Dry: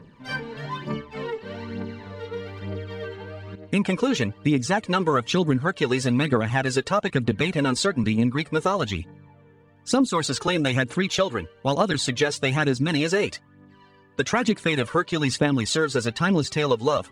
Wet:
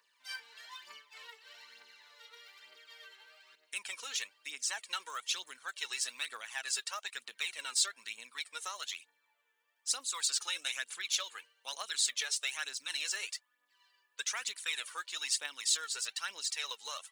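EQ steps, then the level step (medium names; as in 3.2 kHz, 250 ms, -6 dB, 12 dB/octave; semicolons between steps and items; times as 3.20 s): Bessel high-pass 1 kHz, order 2; differentiator; 0.0 dB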